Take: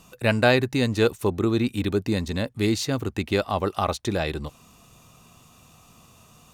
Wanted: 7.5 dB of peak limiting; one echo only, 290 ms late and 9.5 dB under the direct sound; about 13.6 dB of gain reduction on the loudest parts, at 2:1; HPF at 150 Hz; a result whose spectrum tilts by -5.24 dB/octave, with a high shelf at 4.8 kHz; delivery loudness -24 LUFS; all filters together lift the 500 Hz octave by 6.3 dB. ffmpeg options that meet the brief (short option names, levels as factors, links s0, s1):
-af "highpass=150,equalizer=f=500:t=o:g=8,highshelf=f=4800:g=-8,acompressor=threshold=0.0178:ratio=2,alimiter=limit=0.0794:level=0:latency=1,aecho=1:1:290:0.335,volume=2.99"